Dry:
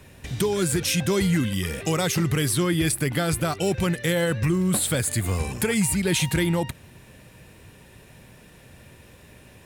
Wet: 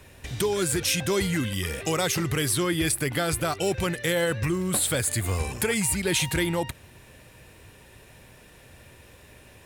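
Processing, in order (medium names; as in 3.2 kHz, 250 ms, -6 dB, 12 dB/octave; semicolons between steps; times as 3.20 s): peaking EQ 180 Hz -6.5 dB 1.2 oct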